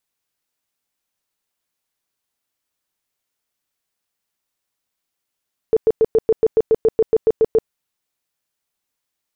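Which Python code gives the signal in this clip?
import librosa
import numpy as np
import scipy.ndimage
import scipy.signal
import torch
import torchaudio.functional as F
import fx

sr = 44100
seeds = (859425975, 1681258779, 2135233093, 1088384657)

y = fx.tone_burst(sr, hz=445.0, cycles=16, every_s=0.14, bursts=14, level_db=-9.5)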